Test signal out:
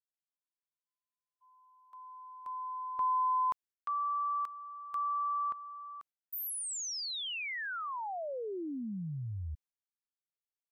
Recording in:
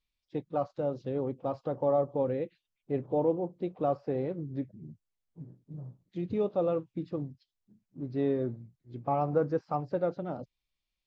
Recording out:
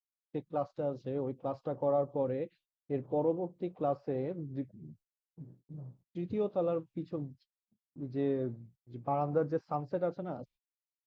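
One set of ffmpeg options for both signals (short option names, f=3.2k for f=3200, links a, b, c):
-af "agate=range=-35dB:threshold=-57dB:ratio=16:detection=peak,volume=-3dB"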